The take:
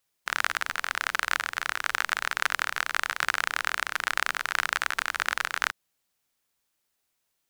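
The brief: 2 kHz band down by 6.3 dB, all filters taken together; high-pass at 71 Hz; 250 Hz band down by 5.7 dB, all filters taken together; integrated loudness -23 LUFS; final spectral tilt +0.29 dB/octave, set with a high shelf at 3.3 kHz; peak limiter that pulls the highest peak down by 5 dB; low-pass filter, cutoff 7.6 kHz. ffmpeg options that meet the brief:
-af "highpass=71,lowpass=7600,equalizer=f=250:t=o:g=-8,equalizer=f=2000:t=o:g=-7,highshelf=f=3300:g=-5,volume=4.22,alimiter=limit=0.794:level=0:latency=1"

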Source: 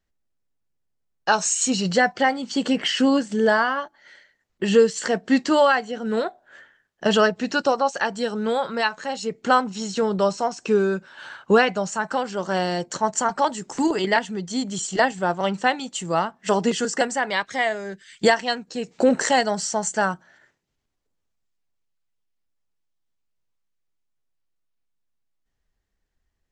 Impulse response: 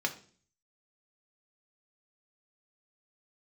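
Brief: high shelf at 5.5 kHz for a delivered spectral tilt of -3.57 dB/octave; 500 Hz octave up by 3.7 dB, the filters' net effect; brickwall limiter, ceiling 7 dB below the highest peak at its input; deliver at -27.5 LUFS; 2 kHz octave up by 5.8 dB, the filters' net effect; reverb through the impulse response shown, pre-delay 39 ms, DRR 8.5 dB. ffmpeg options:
-filter_complex "[0:a]equalizer=f=500:t=o:g=4,equalizer=f=2000:t=o:g=7.5,highshelf=f=5500:g=-4,alimiter=limit=0.422:level=0:latency=1,asplit=2[s0][s1];[1:a]atrim=start_sample=2205,adelay=39[s2];[s1][s2]afir=irnorm=-1:irlink=0,volume=0.188[s3];[s0][s3]amix=inputs=2:normalize=0,volume=0.447"

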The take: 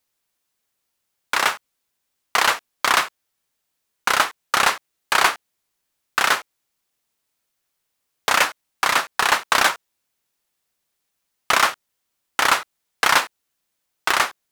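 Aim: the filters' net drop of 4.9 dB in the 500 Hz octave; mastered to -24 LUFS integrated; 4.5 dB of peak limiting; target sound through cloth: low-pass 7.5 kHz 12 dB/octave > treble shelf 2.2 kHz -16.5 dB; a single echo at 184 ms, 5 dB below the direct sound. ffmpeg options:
-af "equalizer=f=500:t=o:g=-5,alimiter=limit=0.447:level=0:latency=1,lowpass=7500,highshelf=f=2200:g=-16.5,aecho=1:1:184:0.562,volume=1.68"

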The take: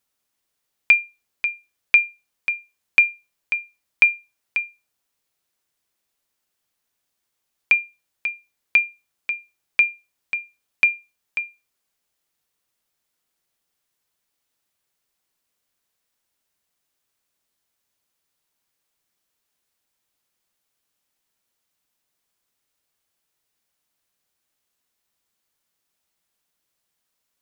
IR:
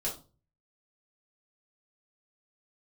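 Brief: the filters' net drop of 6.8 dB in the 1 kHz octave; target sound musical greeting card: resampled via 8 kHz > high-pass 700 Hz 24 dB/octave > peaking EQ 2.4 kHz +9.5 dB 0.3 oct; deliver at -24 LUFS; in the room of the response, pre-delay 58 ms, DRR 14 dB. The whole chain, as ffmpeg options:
-filter_complex "[0:a]equalizer=f=1000:t=o:g=-9,asplit=2[s0][s1];[1:a]atrim=start_sample=2205,adelay=58[s2];[s1][s2]afir=irnorm=-1:irlink=0,volume=0.133[s3];[s0][s3]amix=inputs=2:normalize=0,aresample=8000,aresample=44100,highpass=f=700:w=0.5412,highpass=f=700:w=1.3066,equalizer=f=2400:t=o:w=0.3:g=9.5,volume=0.282"

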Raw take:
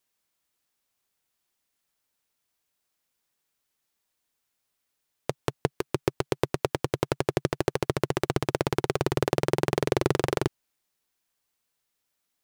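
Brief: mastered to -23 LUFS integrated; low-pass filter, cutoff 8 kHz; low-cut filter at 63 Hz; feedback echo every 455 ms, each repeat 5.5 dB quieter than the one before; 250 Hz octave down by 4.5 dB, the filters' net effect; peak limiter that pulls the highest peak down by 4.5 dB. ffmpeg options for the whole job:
-af "highpass=63,lowpass=8000,equalizer=f=250:t=o:g=-8,alimiter=limit=0.299:level=0:latency=1,aecho=1:1:455|910|1365|1820|2275|2730|3185:0.531|0.281|0.149|0.079|0.0419|0.0222|0.0118,volume=2.99"

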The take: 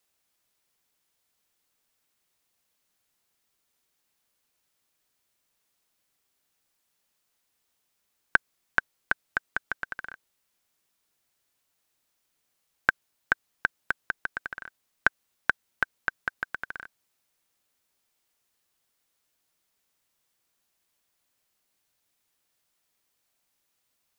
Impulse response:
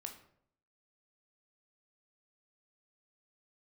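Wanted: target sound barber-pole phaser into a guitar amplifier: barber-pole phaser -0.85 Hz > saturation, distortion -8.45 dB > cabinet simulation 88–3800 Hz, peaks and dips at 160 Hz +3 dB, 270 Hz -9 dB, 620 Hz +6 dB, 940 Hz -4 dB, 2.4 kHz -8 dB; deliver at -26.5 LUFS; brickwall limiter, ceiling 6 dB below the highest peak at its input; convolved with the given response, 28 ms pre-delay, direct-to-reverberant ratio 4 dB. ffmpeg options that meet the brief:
-filter_complex "[0:a]alimiter=limit=0.376:level=0:latency=1,asplit=2[s0][s1];[1:a]atrim=start_sample=2205,adelay=28[s2];[s1][s2]afir=irnorm=-1:irlink=0,volume=0.944[s3];[s0][s3]amix=inputs=2:normalize=0,asplit=2[s4][s5];[s5]afreqshift=-0.85[s6];[s4][s6]amix=inputs=2:normalize=1,asoftclip=threshold=0.075,highpass=88,equalizer=f=160:t=q:w=4:g=3,equalizer=f=270:t=q:w=4:g=-9,equalizer=f=620:t=q:w=4:g=6,equalizer=f=940:t=q:w=4:g=-4,equalizer=f=2400:t=q:w=4:g=-8,lowpass=f=3800:w=0.5412,lowpass=f=3800:w=1.3066,volume=5.01"

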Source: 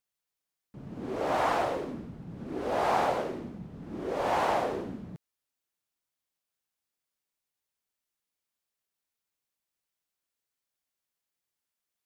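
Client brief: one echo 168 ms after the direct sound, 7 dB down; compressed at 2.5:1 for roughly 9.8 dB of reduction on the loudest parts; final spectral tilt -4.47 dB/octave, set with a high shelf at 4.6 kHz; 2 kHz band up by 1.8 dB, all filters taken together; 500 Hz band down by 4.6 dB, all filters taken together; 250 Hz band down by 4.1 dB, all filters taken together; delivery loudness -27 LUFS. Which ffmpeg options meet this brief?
-af "equalizer=f=250:t=o:g=-3.5,equalizer=f=500:t=o:g=-5.5,equalizer=f=2000:t=o:g=3.5,highshelf=f=4600:g=-5,acompressor=threshold=0.01:ratio=2.5,aecho=1:1:168:0.447,volume=4.73"

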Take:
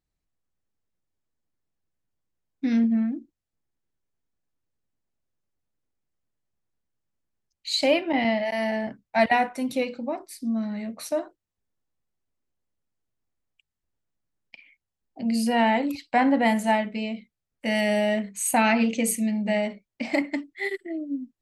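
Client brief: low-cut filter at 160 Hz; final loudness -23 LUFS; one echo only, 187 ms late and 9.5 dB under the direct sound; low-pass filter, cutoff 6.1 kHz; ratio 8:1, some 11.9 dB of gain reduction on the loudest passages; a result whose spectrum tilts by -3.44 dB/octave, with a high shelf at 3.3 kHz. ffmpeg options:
-af "highpass=160,lowpass=6100,highshelf=f=3300:g=4.5,acompressor=threshold=0.0398:ratio=8,aecho=1:1:187:0.335,volume=2.99"

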